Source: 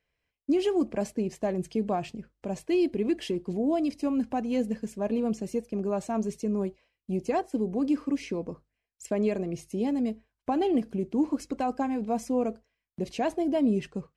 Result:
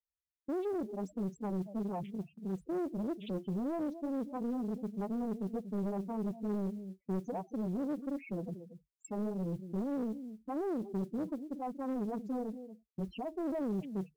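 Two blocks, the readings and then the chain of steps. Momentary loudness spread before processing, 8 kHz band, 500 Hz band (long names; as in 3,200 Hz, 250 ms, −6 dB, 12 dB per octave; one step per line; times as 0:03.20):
9 LU, below −10 dB, −10.0 dB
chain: downward compressor 1.5 to 1, threshold −30 dBFS, peak gain reduction 4 dB
brickwall limiter −26.5 dBFS, peak gain reduction 7.5 dB
parametric band 190 Hz +7 dB 0.25 octaves
single-tap delay 233 ms −12.5 dB
spectral peaks only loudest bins 4
noise that follows the level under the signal 32 dB
noise gate with hold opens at −47 dBFS
soft clipping −29 dBFS, distortion −16 dB
highs frequency-modulated by the lows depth 0.92 ms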